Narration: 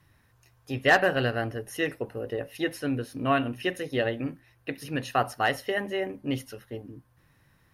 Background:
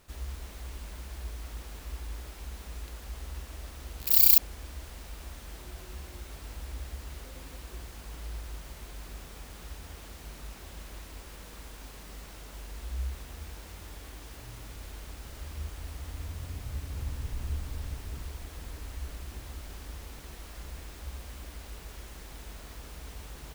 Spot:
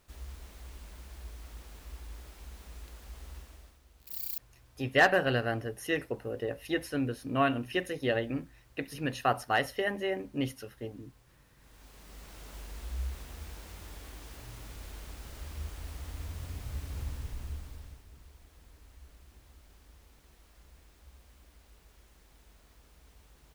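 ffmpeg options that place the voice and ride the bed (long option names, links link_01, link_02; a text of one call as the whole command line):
ffmpeg -i stem1.wav -i stem2.wav -filter_complex "[0:a]adelay=4100,volume=-2.5dB[link_01];[1:a]volume=11.5dB,afade=type=out:start_time=3.34:duration=0.46:silence=0.223872,afade=type=in:start_time=11.56:duration=0.93:silence=0.133352,afade=type=out:start_time=16.98:duration=1.06:silence=0.211349[link_02];[link_01][link_02]amix=inputs=2:normalize=0" out.wav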